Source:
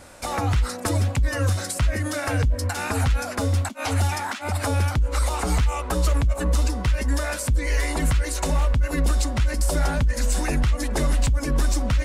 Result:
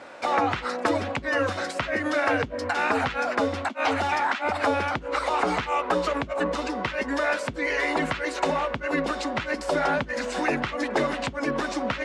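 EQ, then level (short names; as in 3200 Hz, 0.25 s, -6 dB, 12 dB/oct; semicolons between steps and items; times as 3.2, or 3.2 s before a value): HPF 320 Hz 12 dB/oct; LPF 3000 Hz 12 dB/oct; +5.0 dB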